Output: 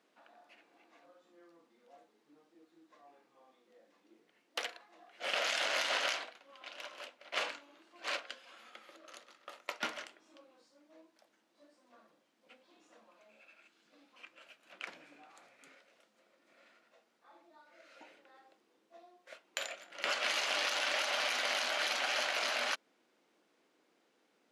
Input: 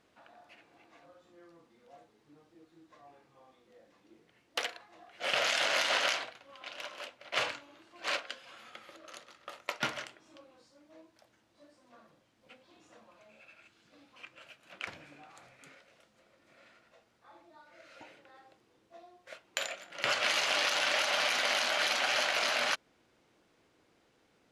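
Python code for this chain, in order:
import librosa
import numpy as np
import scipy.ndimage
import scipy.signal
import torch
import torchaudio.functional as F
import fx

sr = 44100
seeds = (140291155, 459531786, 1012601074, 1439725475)

y = scipy.signal.sosfilt(scipy.signal.butter(4, 210.0, 'highpass', fs=sr, output='sos'), x)
y = y * 10.0 ** (-4.0 / 20.0)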